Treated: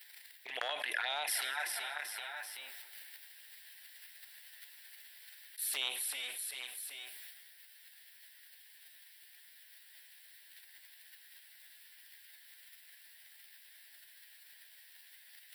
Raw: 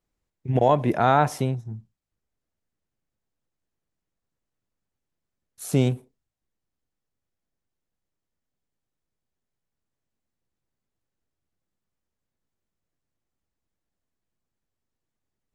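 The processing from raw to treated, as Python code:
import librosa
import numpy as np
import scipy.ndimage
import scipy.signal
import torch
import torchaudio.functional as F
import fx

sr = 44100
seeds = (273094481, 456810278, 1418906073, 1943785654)

y = fx.fixed_phaser(x, sr, hz=2900.0, stages=4)
y = fx.echo_feedback(y, sr, ms=385, feedback_pct=30, wet_db=-13.5)
y = fx.env_flanger(y, sr, rest_ms=11.8, full_db=-18.0)
y = fx.transient(y, sr, attack_db=-2, sustain_db=10)
y = fx.rider(y, sr, range_db=10, speed_s=0.5)
y = fx.ladder_highpass(y, sr, hz=1600.0, resonance_pct=60)
y = fx.peak_eq(y, sr, hz=2300.0, db=-12.0, octaves=1.1)
y = fx.rev_plate(y, sr, seeds[0], rt60_s=1.3, hf_ratio=0.95, predelay_ms=0, drr_db=19.0)
y = fx.env_flatten(y, sr, amount_pct=70)
y = F.gain(torch.from_numpy(y), 13.0).numpy()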